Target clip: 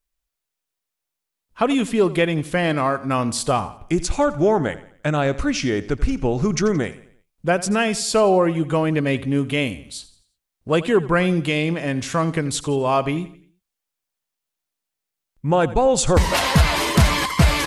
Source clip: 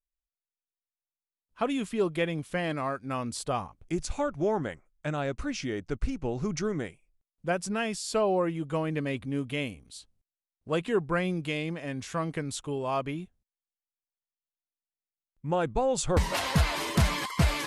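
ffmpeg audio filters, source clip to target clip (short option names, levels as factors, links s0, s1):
-filter_complex "[0:a]asplit=2[s0][s1];[s1]alimiter=limit=0.0708:level=0:latency=1:release=215,volume=0.794[s2];[s0][s2]amix=inputs=2:normalize=0,aecho=1:1:86|172|258|344:0.141|0.0593|0.0249|0.0105,volume=2.11"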